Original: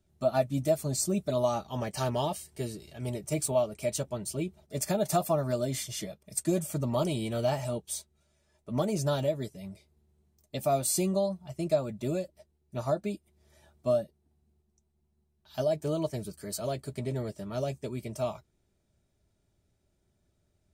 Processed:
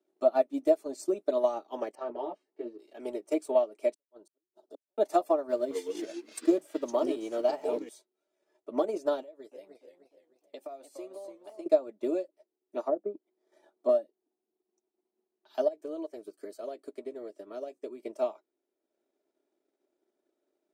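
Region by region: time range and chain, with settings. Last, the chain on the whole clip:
1.95–2.79 s: tape spacing loss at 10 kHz 31 dB + three-phase chorus
3.94–4.98 s: compression 2:1, threshold -52 dBFS + inverted gate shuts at -36 dBFS, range -42 dB + Butterworth band-stop 2.2 kHz, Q 1.3
5.49–7.89 s: send-on-delta sampling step -48.5 dBFS + ever faster or slower copies 214 ms, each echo -5 st, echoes 2, each echo -6 dB
9.22–11.66 s: high-pass 410 Hz 6 dB/octave + compression 5:1, threshold -42 dBFS + modulated delay 299 ms, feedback 42%, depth 175 cents, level -6.5 dB
12.86–13.89 s: band-stop 2.7 kHz, Q 5.9 + low-pass that closes with the level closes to 620 Hz, closed at -27 dBFS
15.68–18.00 s: treble shelf 11 kHz +5 dB + compression 2:1, threshold -40 dBFS + band-stop 880 Hz, Q 8.6
whole clip: steep high-pass 290 Hz 48 dB/octave; tilt EQ -3.5 dB/octave; transient shaper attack +4 dB, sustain -6 dB; trim -2.5 dB

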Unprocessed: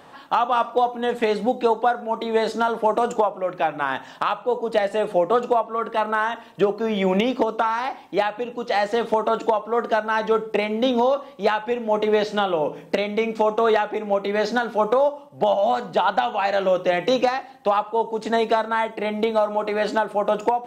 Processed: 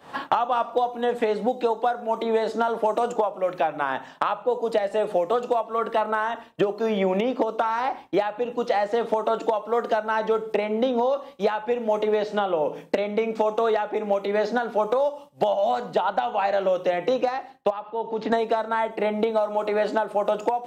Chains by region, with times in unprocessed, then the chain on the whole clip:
17.70–18.32 s: compression 2:1, threshold -32 dBFS + distance through air 260 m
whole clip: expander -34 dBFS; dynamic bell 600 Hz, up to +5 dB, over -30 dBFS, Q 0.85; three bands compressed up and down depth 100%; trim -7 dB

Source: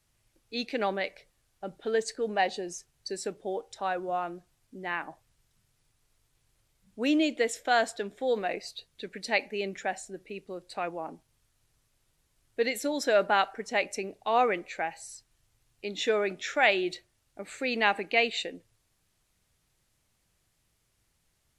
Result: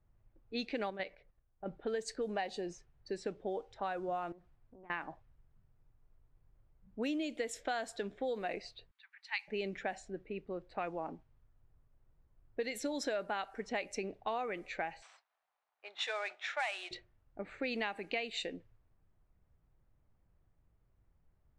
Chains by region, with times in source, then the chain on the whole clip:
0.90–1.66 s: level held to a coarse grid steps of 10 dB + distance through air 54 m
4.32–4.90 s: compression 4:1, threshold -54 dBFS + loudspeaker Doppler distortion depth 0.69 ms
8.91–9.48 s: steep high-pass 870 Hz 72 dB/octave + peaking EQ 1.1 kHz -5 dB 1.9 oct
15.02–16.91 s: CVSD coder 64 kbps + Chebyshev band-pass 720–8600 Hz, order 3 + peaking EQ 3.9 kHz +3 dB 0.29 oct
whole clip: level-controlled noise filter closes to 1.1 kHz, open at -25 dBFS; bass shelf 90 Hz +11 dB; compression 12:1, threshold -31 dBFS; trim -2 dB

